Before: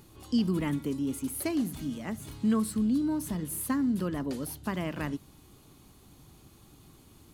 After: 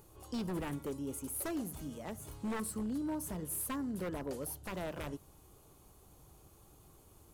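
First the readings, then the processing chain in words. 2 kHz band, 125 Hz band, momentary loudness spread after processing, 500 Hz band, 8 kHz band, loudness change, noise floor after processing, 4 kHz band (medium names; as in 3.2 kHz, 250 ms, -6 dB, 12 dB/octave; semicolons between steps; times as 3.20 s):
-6.5 dB, -9.0 dB, 7 LU, -4.0 dB, -2.5 dB, -8.5 dB, -62 dBFS, -8.0 dB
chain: ten-band graphic EQ 125 Hz -4 dB, 250 Hz -10 dB, 500 Hz +4 dB, 2 kHz -6 dB, 4 kHz -8 dB; wavefolder -30 dBFS; trim -1.5 dB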